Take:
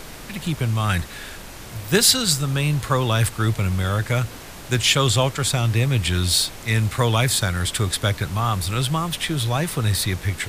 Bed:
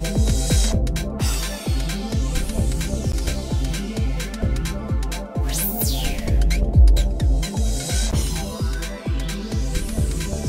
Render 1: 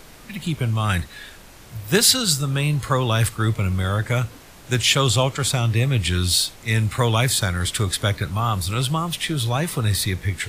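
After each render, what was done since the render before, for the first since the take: noise print and reduce 7 dB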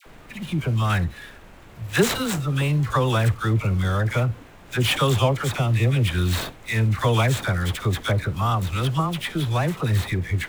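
median filter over 9 samples; phase dispersion lows, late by 63 ms, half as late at 1 kHz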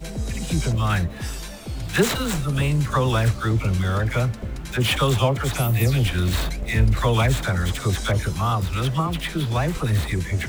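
add bed -9 dB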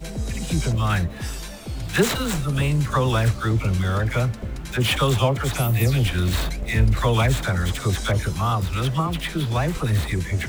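no audible change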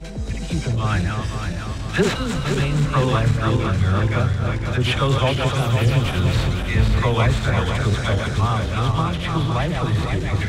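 backward echo that repeats 255 ms, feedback 73%, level -4.5 dB; distance through air 63 m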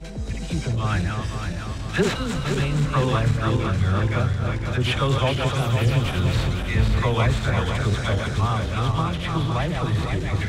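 trim -2.5 dB

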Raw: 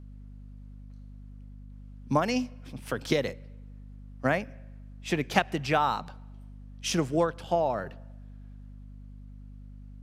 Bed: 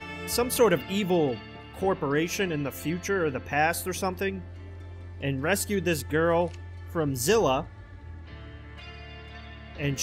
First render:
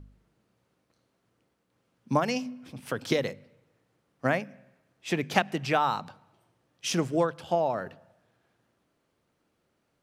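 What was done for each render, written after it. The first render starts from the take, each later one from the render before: de-hum 50 Hz, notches 5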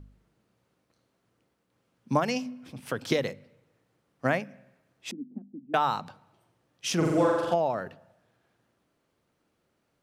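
5.11–5.74 s: Butterworth band-pass 250 Hz, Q 3.7; 6.96–7.54 s: flutter echo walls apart 7.5 m, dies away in 1.3 s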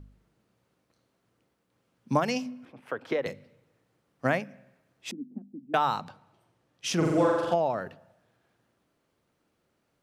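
2.65–3.26 s: three-band isolator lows -14 dB, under 320 Hz, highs -20 dB, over 2.4 kHz; 6.04–7.81 s: treble shelf 11 kHz -6 dB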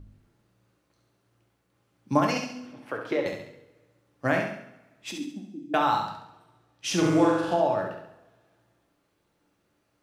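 flutter echo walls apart 11.7 m, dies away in 0.6 s; two-slope reverb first 0.47 s, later 1.6 s, from -20 dB, DRR 3.5 dB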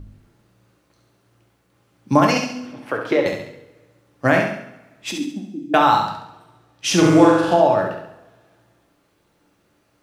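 trim +9 dB; peak limiter -1 dBFS, peak gain reduction 2 dB

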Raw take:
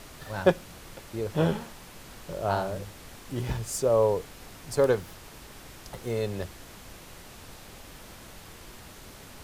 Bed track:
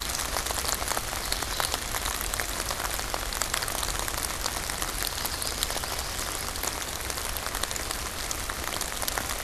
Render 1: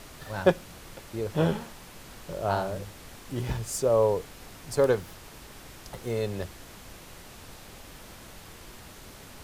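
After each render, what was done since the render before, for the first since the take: no audible change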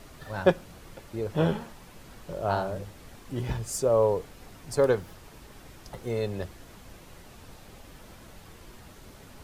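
noise reduction 6 dB, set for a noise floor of -48 dBFS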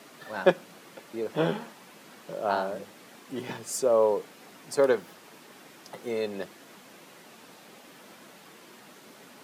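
high-pass 190 Hz 24 dB/octave; peaking EQ 2.2 kHz +2.5 dB 2 oct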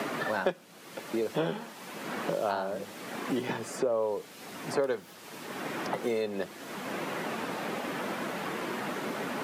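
three bands compressed up and down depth 100%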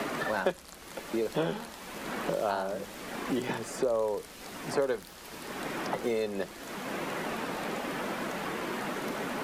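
add bed track -22.5 dB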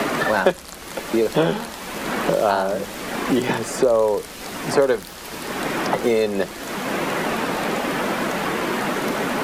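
trim +11.5 dB

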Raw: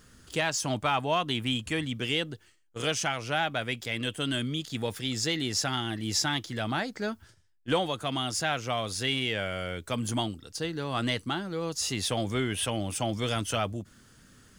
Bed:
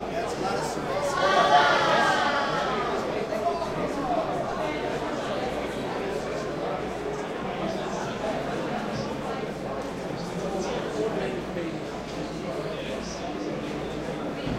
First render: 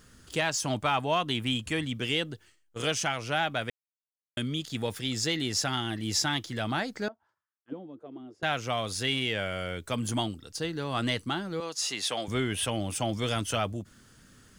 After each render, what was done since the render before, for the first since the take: 3.70–4.37 s: mute; 7.08–8.43 s: auto-wah 260–1300 Hz, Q 5, down, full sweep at -25.5 dBFS; 11.60–12.28 s: frequency weighting A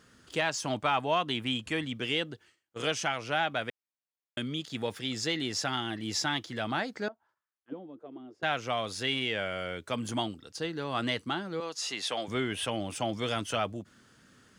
high-pass 210 Hz 6 dB/octave; treble shelf 7.3 kHz -12 dB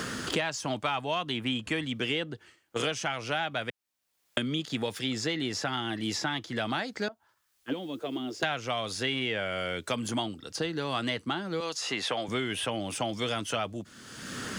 three bands compressed up and down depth 100%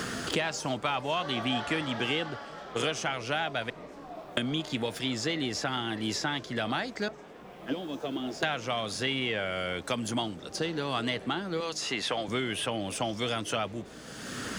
add bed -17 dB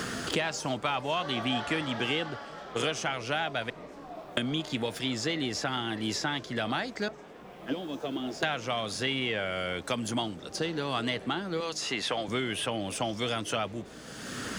no audible change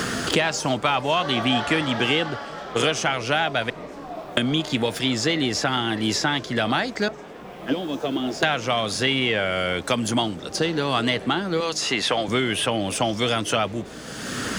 trim +8.5 dB; peak limiter -3 dBFS, peak gain reduction 1 dB

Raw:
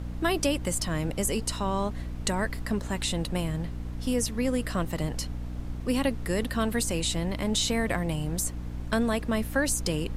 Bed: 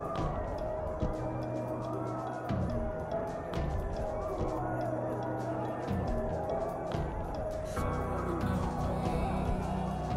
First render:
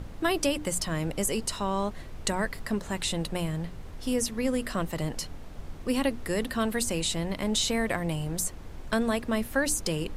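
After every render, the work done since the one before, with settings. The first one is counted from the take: hum notches 60/120/180/240/300 Hz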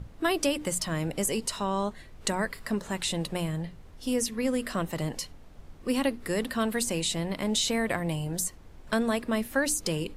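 noise print and reduce 8 dB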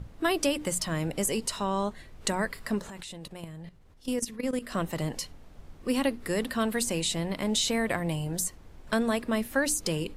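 2.90–4.72 s: level held to a coarse grid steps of 14 dB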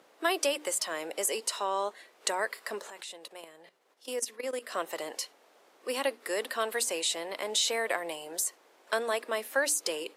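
high-pass 410 Hz 24 dB/octave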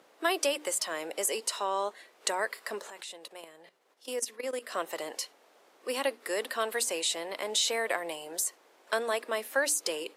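no audible change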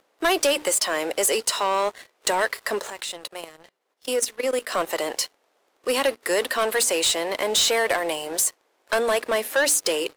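waveshaping leveller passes 3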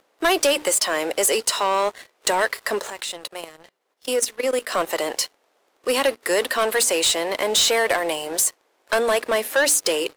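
trim +2 dB

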